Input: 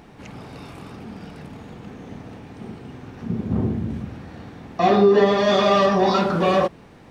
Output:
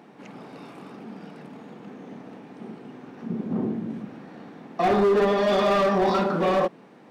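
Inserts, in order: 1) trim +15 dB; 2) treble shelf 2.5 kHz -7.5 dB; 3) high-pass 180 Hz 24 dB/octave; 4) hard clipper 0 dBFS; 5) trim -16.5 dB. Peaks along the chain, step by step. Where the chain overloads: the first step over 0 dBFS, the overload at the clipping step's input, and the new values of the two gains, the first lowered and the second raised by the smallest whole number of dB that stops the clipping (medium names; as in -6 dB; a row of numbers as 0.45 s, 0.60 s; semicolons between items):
+10.0 dBFS, +10.0 dBFS, +9.0 dBFS, 0.0 dBFS, -16.5 dBFS; step 1, 9.0 dB; step 1 +6 dB, step 5 -7.5 dB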